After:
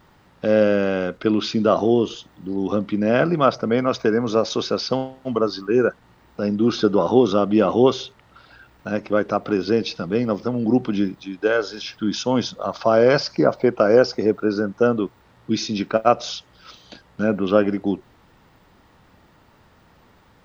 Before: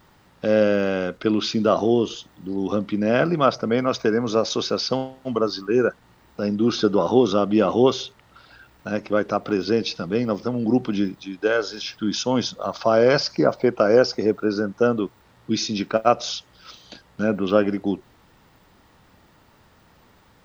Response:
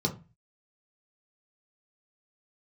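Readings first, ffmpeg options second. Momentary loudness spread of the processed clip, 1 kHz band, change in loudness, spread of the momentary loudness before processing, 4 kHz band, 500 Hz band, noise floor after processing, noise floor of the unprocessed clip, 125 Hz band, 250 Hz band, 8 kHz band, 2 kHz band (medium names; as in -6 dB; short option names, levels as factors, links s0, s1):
10 LU, +1.0 dB, +1.5 dB, 10 LU, -1.0 dB, +1.5 dB, -55 dBFS, -56 dBFS, +1.5 dB, +1.5 dB, no reading, +1.0 dB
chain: -af "highshelf=f=4500:g=-6,volume=1.19"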